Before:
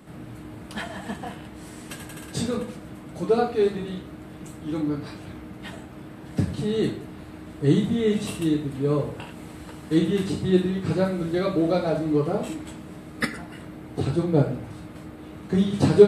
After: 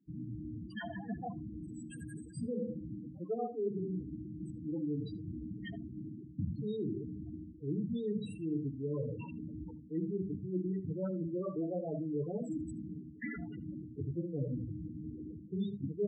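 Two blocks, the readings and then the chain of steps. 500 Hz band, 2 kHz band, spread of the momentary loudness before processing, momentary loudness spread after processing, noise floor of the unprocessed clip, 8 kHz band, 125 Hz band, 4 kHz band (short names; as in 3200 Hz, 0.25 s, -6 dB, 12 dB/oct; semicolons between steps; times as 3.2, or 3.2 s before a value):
-16.0 dB, -16.0 dB, 18 LU, 9 LU, -42 dBFS, under -20 dB, -12.0 dB, -22.0 dB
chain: gate with hold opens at -37 dBFS; high shelf 4100 Hz +11 dB; notch 630 Hz, Q 15; reverse; compressor 8:1, threshold -31 dBFS, peak gain reduction 23 dB; reverse; loudest bins only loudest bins 8; air absorption 57 m; on a send: echo 76 ms -22.5 dB; on the sum: gain -1.5 dB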